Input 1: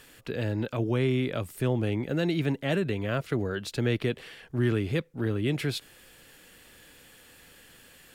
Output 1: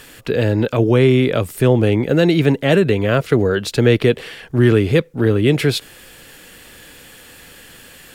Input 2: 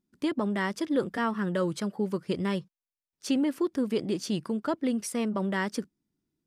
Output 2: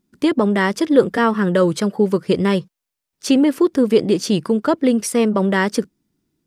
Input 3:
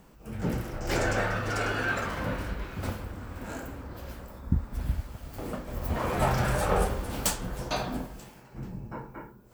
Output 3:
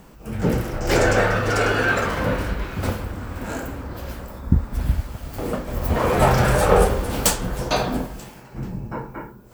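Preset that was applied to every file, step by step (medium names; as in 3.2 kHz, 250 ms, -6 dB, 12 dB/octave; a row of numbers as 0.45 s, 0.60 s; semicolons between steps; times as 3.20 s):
dynamic bell 460 Hz, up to +5 dB, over -44 dBFS, Q 3.2; peak normalisation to -1.5 dBFS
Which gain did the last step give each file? +12.0 dB, +11.5 dB, +8.5 dB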